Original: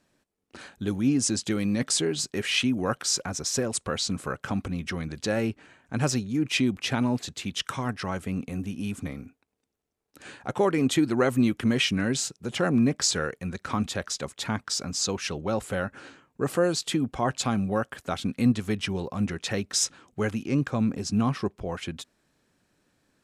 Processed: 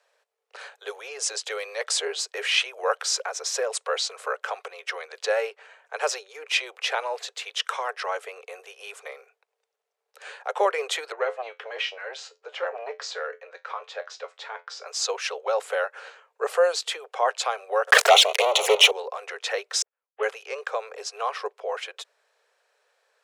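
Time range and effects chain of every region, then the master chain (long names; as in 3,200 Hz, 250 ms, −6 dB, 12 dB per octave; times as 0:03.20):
0:11.12–0:14.86: high-frequency loss of the air 140 metres + tuned comb filter 87 Hz, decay 0.19 s, mix 70% + saturating transformer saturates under 440 Hz
0:17.87–0:18.91: leveller curve on the samples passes 5 + flanger swept by the level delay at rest 9.5 ms, full sweep at −15.5 dBFS + envelope flattener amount 70%
0:19.82–0:20.23: variable-slope delta modulation 16 kbit/s + spectral tilt −2 dB per octave + expander for the loud parts 2.5 to 1, over −49 dBFS
whole clip: Butterworth high-pass 430 Hz 96 dB per octave; high-shelf EQ 6,700 Hz −11 dB; level +5 dB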